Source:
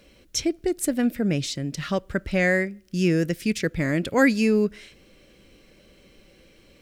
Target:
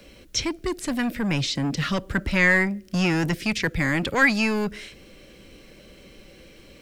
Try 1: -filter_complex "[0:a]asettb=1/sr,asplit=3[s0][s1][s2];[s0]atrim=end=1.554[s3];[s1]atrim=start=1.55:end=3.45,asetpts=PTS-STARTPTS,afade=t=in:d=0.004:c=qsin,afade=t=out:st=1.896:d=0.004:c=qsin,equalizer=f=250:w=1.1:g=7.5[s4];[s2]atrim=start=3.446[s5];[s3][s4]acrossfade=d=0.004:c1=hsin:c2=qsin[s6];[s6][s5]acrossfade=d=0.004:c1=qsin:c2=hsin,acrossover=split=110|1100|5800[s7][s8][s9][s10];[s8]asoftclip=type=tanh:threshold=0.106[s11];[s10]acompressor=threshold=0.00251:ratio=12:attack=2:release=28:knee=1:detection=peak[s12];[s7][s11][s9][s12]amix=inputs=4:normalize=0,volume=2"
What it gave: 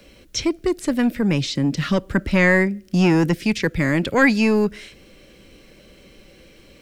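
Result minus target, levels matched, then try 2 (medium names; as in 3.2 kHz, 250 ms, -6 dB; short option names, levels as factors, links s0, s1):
saturation: distortion -6 dB
-filter_complex "[0:a]asettb=1/sr,asplit=3[s0][s1][s2];[s0]atrim=end=1.554[s3];[s1]atrim=start=1.55:end=3.45,asetpts=PTS-STARTPTS,afade=t=in:d=0.004:c=qsin,afade=t=out:st=1.896:d=0.004:c=qsin,equalizer=f=250:w=1.1:g=7.5[s4];[s2]atrim=start=3.446[s5];[s3][s4]acrossfade=d=0.004:c1=hsin:c2=qsin[s6];[s6][s5]acrossfade=d=0.004:c1=qsin:c2=hsin,acrossover=split=110|1100|5800[s7][s8][s9][s10];[s8]asoftclip=type=tanh:threshold=0.0316[s11];[s10]acompressor=threshold=0.00251:ratio=12:attack=2:release=28:knee=1:detection=peak[s12];[s7][s11][s9][s12]amix=inputs=4:normalize=0,volume=2"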